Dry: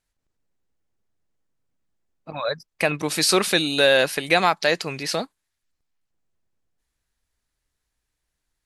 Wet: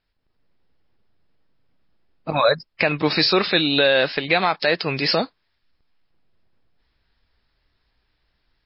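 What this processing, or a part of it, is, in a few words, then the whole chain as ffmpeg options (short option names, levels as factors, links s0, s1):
low-bitrate web radio: -af "dynaudnorm=f=240:g=3:m=2.11,alimiter=limit=0.316:level=0:latency=1:release=305,volume=1.78" -ar 12000 -c:a libmp3lame -b:a 24k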